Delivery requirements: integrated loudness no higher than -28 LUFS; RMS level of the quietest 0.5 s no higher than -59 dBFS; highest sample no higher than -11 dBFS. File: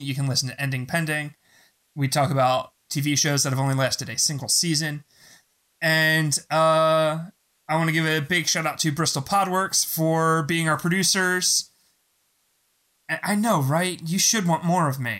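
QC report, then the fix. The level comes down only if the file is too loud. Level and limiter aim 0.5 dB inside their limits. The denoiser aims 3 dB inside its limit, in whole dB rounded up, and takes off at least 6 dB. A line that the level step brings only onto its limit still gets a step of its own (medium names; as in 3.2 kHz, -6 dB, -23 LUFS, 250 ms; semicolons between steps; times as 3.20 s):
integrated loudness -22.0 LUFS: fail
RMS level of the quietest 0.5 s -68 dBFS: pass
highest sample -10.0 dBFS: fail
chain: trim -6.5 dB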